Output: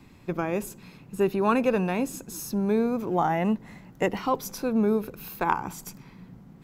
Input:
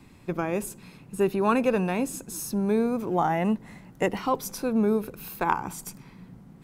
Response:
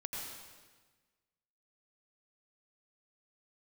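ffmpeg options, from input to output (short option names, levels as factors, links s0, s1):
-af "equalizer=f=9200:w=4.8:g=-12"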